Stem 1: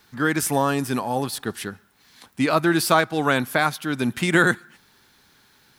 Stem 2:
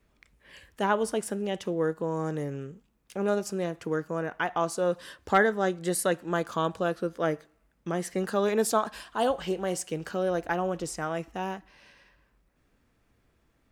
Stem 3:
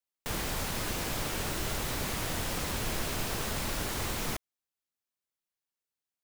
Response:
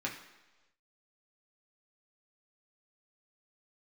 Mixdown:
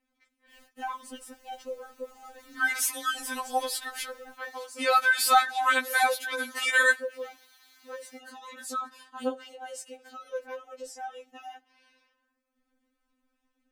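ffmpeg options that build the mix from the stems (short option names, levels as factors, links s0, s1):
-filter_complex "[0:a]highpass=940,adelay=2400,volume=1.19[s0];[1:a]volume=0.531,asplit=2[s1][s2];[2:a]asoftclip=type=tanh:threshold=0.0178,volume=0.112[s3];[s2]apad=whole_len=275033[s4];[s3][s4]sidechaingate=range=0.0224:threshold=0.00126:ratio=16:detection=peak[s5];[s0][s1][s5]amix=inputs=3:normalize=0,afftfilt=real='re*3.46*eq(mod(b,12),0)':imag='im*3.46*eq(mod(b,12),0)':win_size=2048:overlap=0.75"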